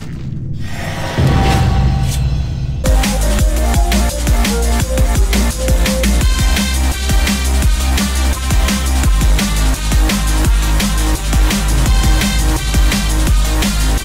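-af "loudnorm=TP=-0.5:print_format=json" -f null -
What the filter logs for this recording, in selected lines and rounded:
"input_i" : "-14.8",
"input_tp" : "-4.3",
"input_lra" : "0.9",
"input_thresh" : "-24.8",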